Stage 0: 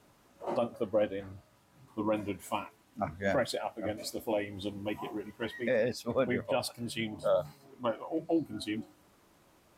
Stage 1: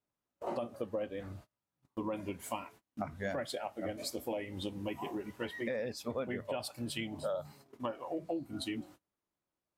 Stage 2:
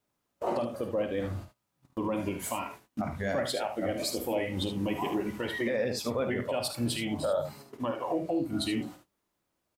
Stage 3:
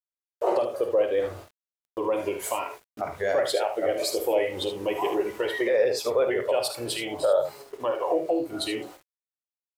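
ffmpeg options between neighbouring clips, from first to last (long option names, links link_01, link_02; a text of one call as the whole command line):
ffmpeg -i in.wav -af "agate=range=-30dB:threshold=-53dB:ratio=16:detection=peak,acompressor=threshold=-37dB:ratio=4,volume=2dB" out.wav
ffmpeg -i in.wav -filter_complex "[0:a]alimiter=level_in=6.5dB:limit=-24dB:level=0:latency=1:release=54,volume=-6.5dB,asplit=2[link_01][link_02];[link_02]aecho=0:1:51|75:0.299|0.355[link_03];[link_01][link_03]amix=inputs=2:normalize=0,volume=9dB" out.wav
ffmpeg -i in.wav -af "lowshelf=frequency=310:width_type=q:width=3:gain=-10,aeval=exprs='val(0)*gte(abs(val(0)),0.00188)':channel_layout=same,volume=3.5dB" out.wav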